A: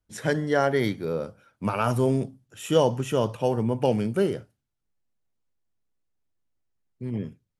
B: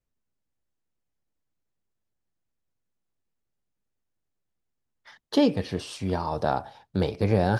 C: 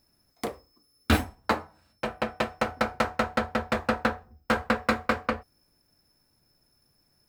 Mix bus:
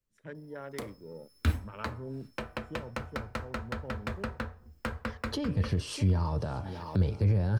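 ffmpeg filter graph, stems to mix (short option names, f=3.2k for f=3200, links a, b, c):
-filter_complex "[0:a]afwtdn=0.0355,volume=-19dB[a];[1:a]bandreject=f=3.7k:w=13,dynaudnorm=f=320:g=5:m=10dB,alimiter=limit=-11.5dB:level=0:latency=1:release=22,volume=-2dB,asplit=2[b][c];[c]volume=-18.5dB[d];[2:a]adelay=350,volume=-3.5dB[e];[d]aecho=0:1:610|1220|1830|2440:1|0.31|0.0961|0.0298[f];[a][b][e][f]amix=inputs=4:normalize=0,dynaudnorm=f=480:g=5:m=5dB,equalizer=f=750:t=o:w=0.28:g=-8.5,acrossover=split=130[g][h];[h]acompressor=threshold=-35dB:ratio=6[i];[g][i]amix=inputs=2:normalize=0"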